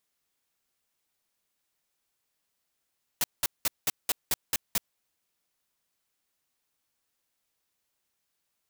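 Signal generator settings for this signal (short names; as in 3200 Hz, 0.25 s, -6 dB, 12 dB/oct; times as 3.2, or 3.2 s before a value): noise bursts white, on 0.03 s, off 0.19 s, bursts 8, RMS -25.5 dBFS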